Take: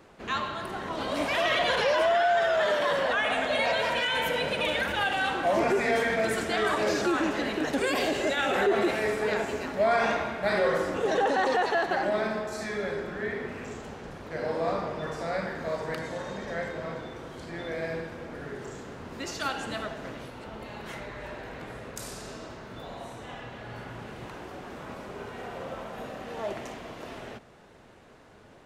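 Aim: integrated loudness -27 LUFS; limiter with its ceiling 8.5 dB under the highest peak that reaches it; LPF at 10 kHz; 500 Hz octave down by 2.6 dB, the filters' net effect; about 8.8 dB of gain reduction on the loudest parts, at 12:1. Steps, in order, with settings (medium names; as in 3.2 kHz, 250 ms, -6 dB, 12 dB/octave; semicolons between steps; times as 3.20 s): low-pass 10 kHz; peaking EQ 500 Hz -3.5 dB; compression 12:1, threshold -31 dBFS; trim +11 dB; peak limiter -17.5 dBFS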